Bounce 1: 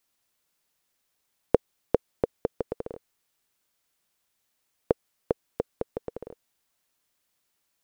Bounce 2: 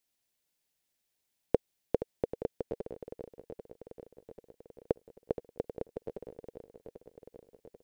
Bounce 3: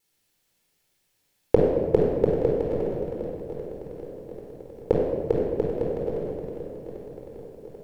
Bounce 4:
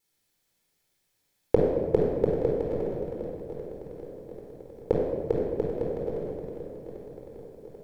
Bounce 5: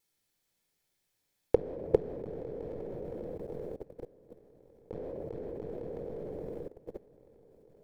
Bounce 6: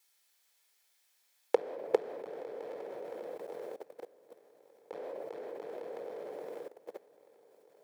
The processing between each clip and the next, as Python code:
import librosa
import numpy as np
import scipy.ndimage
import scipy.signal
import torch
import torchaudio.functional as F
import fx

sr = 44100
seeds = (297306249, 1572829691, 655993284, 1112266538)

y1 = fx.peak_eq(x, sr, hz=1200.0, db=-8.5, octaves=0.68)
y1 = fx.echo_swing(y1, sr, ms=789, ratio=1.5, feedback_pct=57, wet_db=-12)
y1 = F.gain(torch.from_numpy(y1), -5.5).numpy()
y2 = fx.vibrato(y1, sr, rate_hz=3.5, depth_cents=50.0)
y2 = fx.room_shoebox(y2, sr, seeds[0], volume_m3=2000.0, walls='mixed', distance_m=4.2)
y2 = F.gain(torch.from_numpy(y2), 5.0).numpy()
y3 = fx.notch(y2, sr, hz=2800.0, q=12.0)
y3 = F.gain(torch.from_numpy(y3), -3.0).numpy()
y4 = fx.level_steps(y3, sr, step_db=20)
y5 = scipy.signal.sosfilt(scipy.signal.butter(2, 800.0, 'highpass', fs=sr, output='sos'), y4)
y5 = F.gain(torch.from_numpy(y5), 8.0).numpy()